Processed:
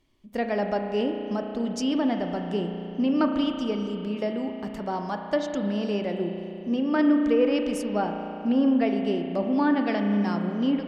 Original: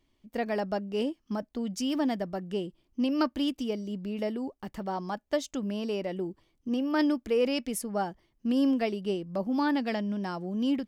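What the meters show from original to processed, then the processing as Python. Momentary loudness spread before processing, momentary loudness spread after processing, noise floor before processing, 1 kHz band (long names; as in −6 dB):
9 LU, 9 LU, −73 dBFS, +4.5 dB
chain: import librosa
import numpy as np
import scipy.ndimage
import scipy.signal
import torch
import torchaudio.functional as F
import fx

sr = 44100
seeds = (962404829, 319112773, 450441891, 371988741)

y = fx.env_lowpass_down(x, sr, base_hz=2400.0, full_db=-22.5)
y = fx.rev_spring(y, sr, rt60_s=3.1, pass_ms=(34,), chirp_ms=25, drr_db=4.0)
y = y * librosa.db_to_amplitude(3.0)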